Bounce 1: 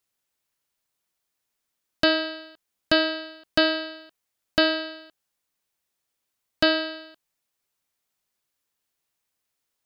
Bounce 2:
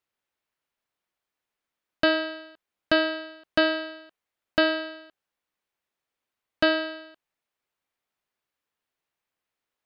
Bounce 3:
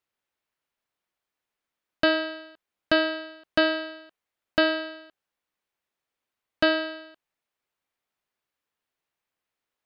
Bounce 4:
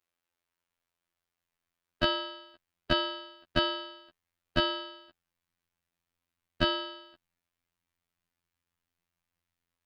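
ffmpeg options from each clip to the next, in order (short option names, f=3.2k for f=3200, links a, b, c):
-af "bass=f=250:g=-4,treble=f=4k:g=-12"
-af anull
-af "asubboost=boost=5:cutoff=190,afftfilt=real='hypot(re,im)*cos(PI*b)':imag='0':win_size=2048:overlap=0.75,volume=2dB"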